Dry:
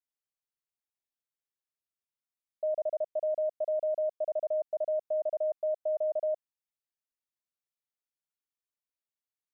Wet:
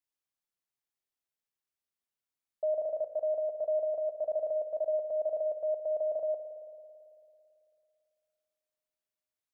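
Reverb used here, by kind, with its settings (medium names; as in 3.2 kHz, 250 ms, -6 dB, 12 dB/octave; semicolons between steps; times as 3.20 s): spring tank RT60 2.6 s, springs 55 ms, chirp 45 ms, DRR 6.5 dB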